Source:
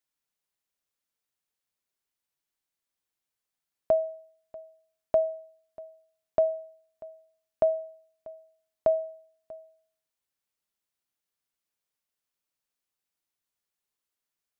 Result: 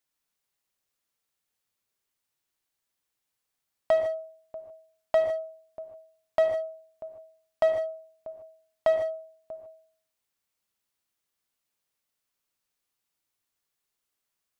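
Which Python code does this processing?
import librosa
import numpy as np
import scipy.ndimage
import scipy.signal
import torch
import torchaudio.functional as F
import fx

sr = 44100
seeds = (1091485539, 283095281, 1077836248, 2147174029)

p1 = 10.0 ** (-24.0 / 20.0) * (np.abs((x / 10.0 ** (-24.0 / 20.0) + 3.0) % 4.0 - 2.0) - 1.0)
p2 = x + (p1 * librosa.db_to_amplitude(-7.0))
p3 = fx.rev_gated(p2, sr, seeds[0], gate_ms=170, shape='rising', drr_db=5.0)
y = fx.doppler_dist(p3, sr, depth_ms=0.3)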